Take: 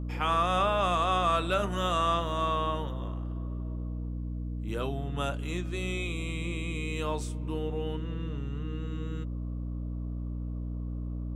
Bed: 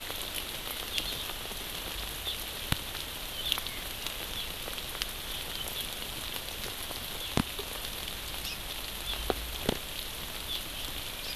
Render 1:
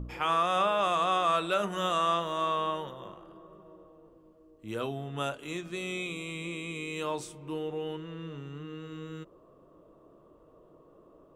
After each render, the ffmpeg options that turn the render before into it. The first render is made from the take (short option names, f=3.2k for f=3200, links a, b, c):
-af "bandreject=f=60:t=h:w=4,bandreject=f=120:t=h:w=4,bandreject=f=180:t=h:w=4,bandreject=f=240:t=h:w=4,bandreject=f=300:t=h:w=4"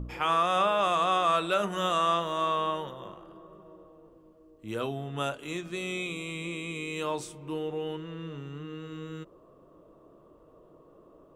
-af "volume=1.5dB"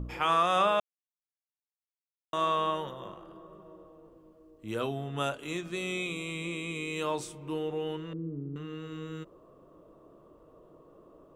-filter_complex "[0:a]asettb=1/sr,asplit=3[a][b][c];[a]atrim=end=8.134[d];[b]atrim=start=8.13:end=8.56,asetpts=PTS-STARTPTS,afade=t=in:d=0.004:c=qsin,afade=t=out:st=0.426:d=0.004:c=qsin,lowpass=f=310:t=q:w=1.8[e];[c]atrim=start=8.556[f];[d][e]acrossfade=d=0.004:c1=hsin:c2=qsin[g];[g][f]acrossfade=d=0.004:c1=qsin:c2=hsin,asplit=3[h][i][j];[h]atrim=end=0.8,asetpts=PTS-STARTPTS,afade=t=out:st=0.796:d=0.004:c=hsin[k];[i]atrim=start=0.8:end=2.33,asetpts=PTS-STARTPTS,volume=0[l];[j]atrim=start=2.33,asetpts=PTS-STARTPTS,afade=t=in:d=0.004:c=hsin[m];[k][l][m]concat=n=3:v=0:a=1"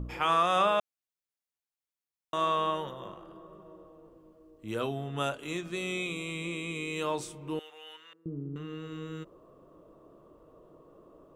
-filter_complex "[0:a]asettb=1/sr,asplit=3[a][b][c];[a]atrim=end=7.594[d];[b]atrim=start=7.59:end=8.26,asetpts=PTS-STARTPTS,afade=t=in:d=0.004:c=qsin,afade=t=out:st=0.666:d=0.004:c=qsin,highpass=1.5k[e];[c]atrim=start=8.256[f];[d][e]acrossfade=d=0.004:c1=hsin:c2=qsin[g];[g][f]acrossfade=d=0.004:c1=qsin:c2=hsin"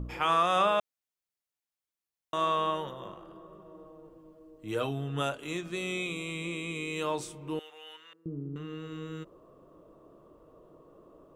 -filter_complex "[0:a]asettb=1/sr,asplit=3[a][b][c];[a]atrim=end=3.744[d];[b]atrim=start=3.74:end=5.21,asetpts=PTS-STARTPTS,afade=t=in:d=0.004:c=qsin,afade=t=out:st=1.466:d=0.004:c=qsin,aecho=1:1:6.5:0.53,atrim=end_sample=64827[e];[c]atrim=start=5.206[f];[d][e]acrossfade=d=0.004:c1=hsin:c2=qsin[g];[g][f]acrossfade=d=0.004:c1=qsin:c2=hsin"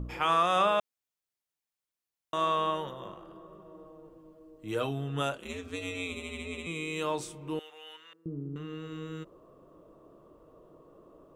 -filter_complex "[0:a]asettb=1/sr,asplit=3[a][b][c];[a]atrim=end=5.384[d];[b]atrim=start=5.38:end=6.67,asetpts=PTS-STARTPTS,afade=t=in:d=0.004:c=qsin,afade=t=out:st=1.286:d=0.004:c=qsin,aeval=exprs='val(0)*sin(2*PI*88*n/s)':c=same[e];[c]atrim=start=6.666[f];[d][e]acrossfade=d=0.004:c1=hsin:c2=qsin[g];[g][f]acrossfade=d=0.004:c1=qsin:c2=hsin"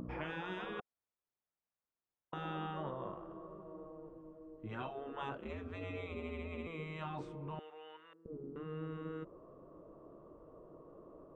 -af "afftfilt=real='re*lt(hypot(re,im),0.0794)':imag='im*lt(hypot(re,im),0.0794)':win_size=1024:overlap=0.75,lowpass=1.4k"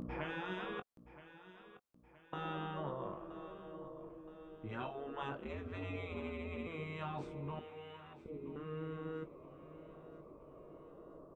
-filter_complex "[0:a]asplit=2[a][b];[b]adelay=21,volume=-11dB[c];[a][c]amix=inputs=2:normalize=0,aecho=1:1:972|1944|2916|3888:0.168|0.0789|0.0371|0.0174"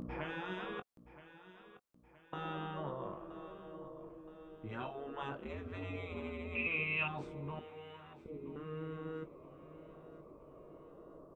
-filter_complex "[0:a]asettb=1/sr,asplit=3[a][b][c];[a]atrim=end=6.554[d];[b]atrim=start=6.55:end=7.08,asetpts=PTS-STARTPTS,afade=t=in:d=0.004:c=qsin,afade=t=out:st=0.526:d=0.004:c=qsin,lowpass=f=2.6k:t=q:w=15[e];[c]atrim=start=7.076[f];[d][e]acrossfade=d=0.004:c1=hsin:c2=qsin[g];[g][f]acrossfade=d=0.004:c1=qsin:c2=hsin"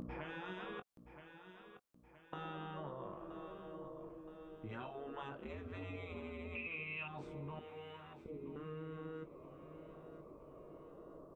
-af "acompressor=threshold=-43dB:ratio=4"